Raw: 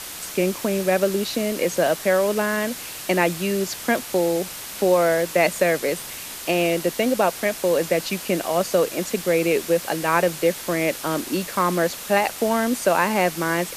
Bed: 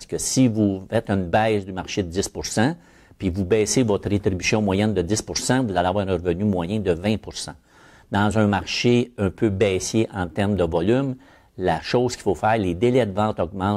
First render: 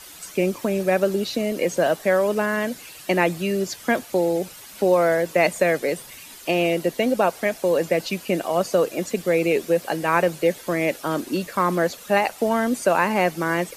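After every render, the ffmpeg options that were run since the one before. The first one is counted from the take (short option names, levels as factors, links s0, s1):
-af "afftdn=nr=11:nf=-35"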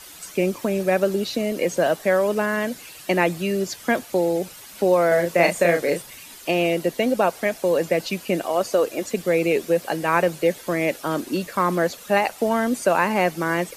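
-filter_complex "[0:a]asettb=1/sr,asplit=3[s0][s1][s2];[s0]atrim=end=5.084[s3];[s1]atrim=start=5.08:end=6.02,asetpts=PTS-STARTPTS,afade=t=in:d=0.004:c=qsin,afade=t=out:st=0.936:d=0.004:c=qsin,asplit=2[s4][s5];[s5]adelay=35,volume=0.596[s6];[s4][s6]amix=inputs=2:normalize=0,atrim=end_sample=41454[s7];[s2]atrim=start=6.016[s8];[s3][s7]acrossfade=d=0.004:c1=hsin:c2=qsin[s9];[s9][s8]acrossfade=d=0.004:c1=qsin:c2=hsin,asettb=1/sr,asplit=3[s10][s11][s12];[s10]atrim=end=8.464[s13];[s11]atrim=start=8.46:end=9.14,asetpts=PTS-STARTPTS,afade=t=in:d=0.004:c=qsin,afade=t=out:st=0.676:d=0.004:c=qsin,equalizer=f=170:w=4.5:g=-12[s14];[s12]atrim=start=9.136[s15];[s13][s14]acrossfade=d=0.004:c1=hsin:c2=qsin[s16];[s16][s15]acrossfade=d=0.004:c1=qsin:c2=hsin"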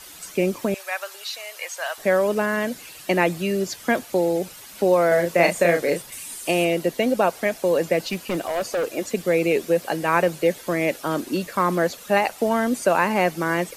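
-filter_complex "[0:a]asettb=1/sr,asplit=3[s0][s1][s2];[s0]atrim=end=0.744[s3];[s1]atrim=start=0.74:end=1.98,asetpts=PTS-STARTPTS,afade=t=in:d=0.004:c=qsin,afade=t=out:st=1.236:d=0.004:c=qsin,highpass=f=880:w=0.5412,highpass=f=880:w=1.3066[s4];[s2]atrim=start=1.976[s5];[s3][s4]acrossfade=d=0.004:c1=hsin:c2=qsin[s6];[s6][s5]acrossfade=d=0.004:c1=qsin:c2=hsin,asettb=1/sr,asplit=3[s7][s8][s9];[s7]atrim=end=6.124[s10];[s8]atrim=start=6.12:end=6.65,asetpts=PTS-STARTPTS,afade=t=in:d=0.004:c=qsin,afade=t=out:st=0.526:d=0.004:c=qsin,equalizer=f=9100:t=o:w=0.74:g=12.5[s11];[s9]atrim=start=6.646[s12];[s10][s11]acrossfade=d=0.004:c1=hsin:c2=qsin[s13];[s13][s12]acrossfade=d=0.004:c1=qsin:c2=hsin,asettb=1/sr,asplit=3[s14][s15][s16];[s14]atrim=end=7.994[s17];[s15]atrim=start=7.99:end=8.87,asetpts=PTS-STARTPTS,afade=t=in:d=0.004:c=qsin,afade=t=out:st=0.876:d=0.004:c=qsin,asoftclip=type=hard:threshold=0.0944[s18];[s16]atrim=start=8.866[s19];[s17][s18]acrossfade=d=0.004:c1=hsin:c2=qsin[s20];[s20][s19]acrossfade=d=0.004:c1=qsin:c2=hsin"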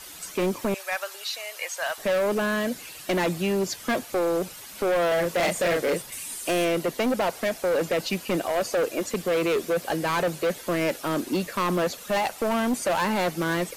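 -af "volume=10.6,asoftclip=hard,volume=0.0944"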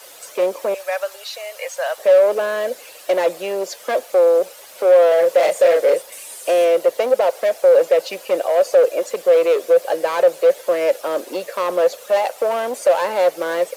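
-af "highpass=f=530:t=q:w=4.9,acrusher=bits=7:mix=0:aa=0.5"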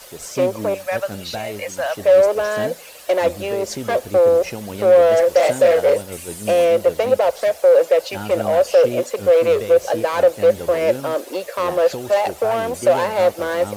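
-filter_complex "[1:a]volume=0.299[s0];[0:a][s0]amix=inputs=2:normalize=0"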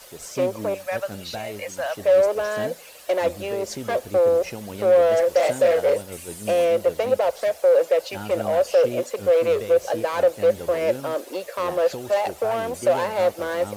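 -af "volume=0.596"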